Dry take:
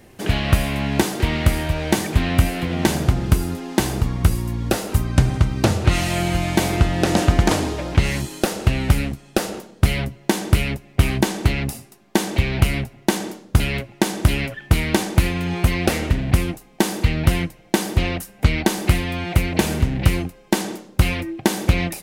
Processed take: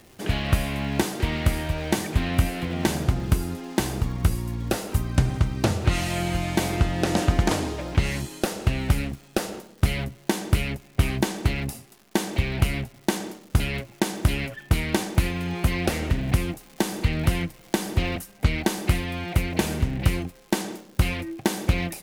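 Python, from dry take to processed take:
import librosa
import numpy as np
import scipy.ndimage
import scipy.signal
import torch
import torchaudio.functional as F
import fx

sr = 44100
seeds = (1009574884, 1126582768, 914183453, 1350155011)

y = fx.dmg_crackle(x, sr, seeds[0], per_s=360.0, level_db=-36.0)
y = fx.band_squash(y, sr, depth_pct=40, at=(15.64, 18.16))
y = F.gain(torch.from_numpy(y), -5.0).numpy()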